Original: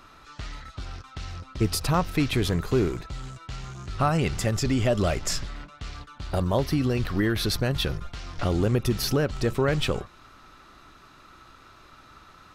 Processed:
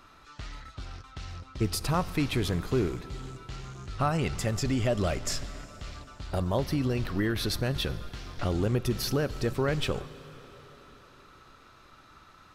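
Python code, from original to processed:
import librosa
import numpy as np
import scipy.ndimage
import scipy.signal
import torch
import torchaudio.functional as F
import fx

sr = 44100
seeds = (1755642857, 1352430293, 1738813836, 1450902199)

y = fx.rev_plate(x, sr, seeds[0], rt60_s=4.5, hf_ratio=0.9, predelay_ms=0, drr_db=15.5)
y = F.gain(torch.from_numpy(y), -4.0).numpy()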